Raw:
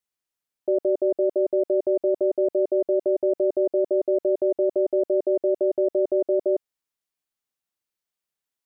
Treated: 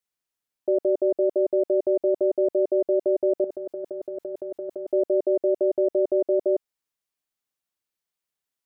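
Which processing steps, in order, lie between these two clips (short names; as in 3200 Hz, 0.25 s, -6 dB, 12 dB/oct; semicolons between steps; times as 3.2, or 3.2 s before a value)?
3.44–4.92 negative-ratio compressor -32 dBFS, ratio -1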